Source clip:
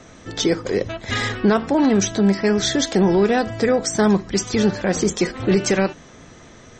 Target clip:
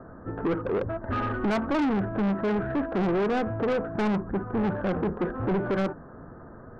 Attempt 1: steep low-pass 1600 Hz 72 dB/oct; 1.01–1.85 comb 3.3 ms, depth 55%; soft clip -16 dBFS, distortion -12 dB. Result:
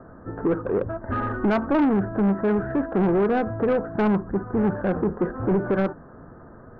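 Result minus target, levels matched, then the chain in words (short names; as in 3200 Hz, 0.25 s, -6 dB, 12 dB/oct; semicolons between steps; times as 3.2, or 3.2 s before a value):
soft clip: distortion -5 dB
steep low-pass 1600 Hz 72 dB/oct; 1.01–1.85 comb 3.3 ms, depth 55%; soft clip -22.5 dBFS, distortion -6 dB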